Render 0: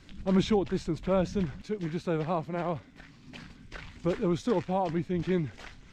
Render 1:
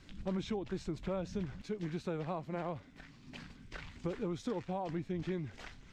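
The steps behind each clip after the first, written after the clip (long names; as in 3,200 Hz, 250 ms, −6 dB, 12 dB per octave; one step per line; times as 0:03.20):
downward compressor 6 to 1, threshold −30 dBFS, peak gain reduction 10.5 dB
level −3.5 dB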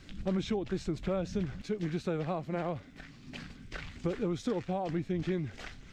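parametric band 960 Hz −6.5 dB 0.27 octaves
level +5 dB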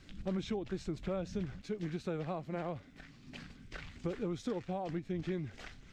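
every ending faded ahead of time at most 330 dB per second
level −4.5 dB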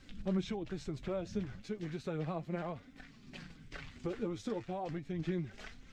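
flanger 0.34 Hz, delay 3.7 ms, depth 6 ms, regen +45%
level +3.5 dB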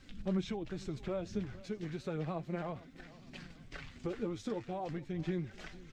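repeating echo 456 ms, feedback 39%, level −19.5 dB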